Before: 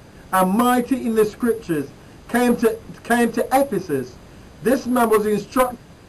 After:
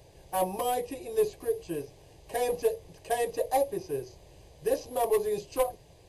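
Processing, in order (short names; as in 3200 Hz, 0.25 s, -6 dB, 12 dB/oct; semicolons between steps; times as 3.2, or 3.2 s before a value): fixed phaser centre 560 Hz, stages 4; gain -7.5 dB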